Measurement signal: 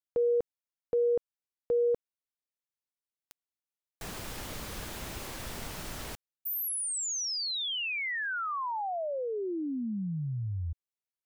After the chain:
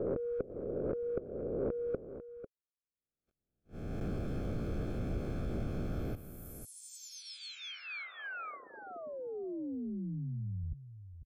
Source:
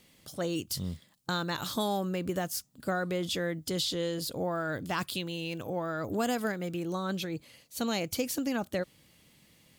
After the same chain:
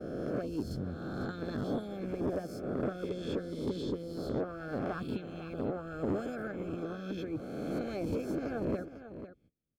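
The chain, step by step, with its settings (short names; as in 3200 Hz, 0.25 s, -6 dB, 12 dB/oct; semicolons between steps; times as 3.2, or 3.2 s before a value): spectral swells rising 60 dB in 1.48 s; gate -48 dBFS, range -34 dB; harmonic-percussive split harmonic -18 dB; in parallel at +2 dB: compressor, threshold -44 dBFS; on the sum: running mean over 46 samples; soft clip -32 dBFS; on a send: echo 0.497 s -12 dB; on the sum: gain +6.5 dB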